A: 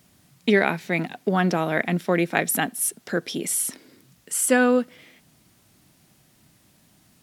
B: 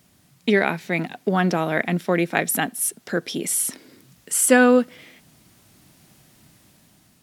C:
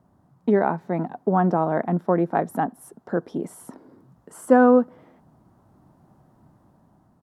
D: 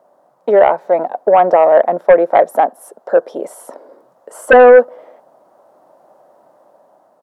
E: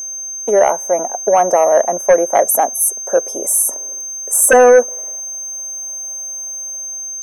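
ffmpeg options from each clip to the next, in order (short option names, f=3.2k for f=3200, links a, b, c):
-af "dynaudnorm=f=440:g=5:m=5.5dB"
-af "firequalizer=gain_entry='entry(500,0);entry(910,5);entry(2300,-24)':delay=0.05:min_phase=1"
-af "highpass=f=560:t=q:w=4.7,aeval=exprs='1.5*sin(PI/2*2.51*val(0)/1.5)':c=same,volume=-5dB"
-af "aeval=exprs='val(0)+0.00794*sin(2*PI*6300*n/s)':c=same,aexciter=amount=10.9:drive=9.5:freq=6k,volume=-2.5dB"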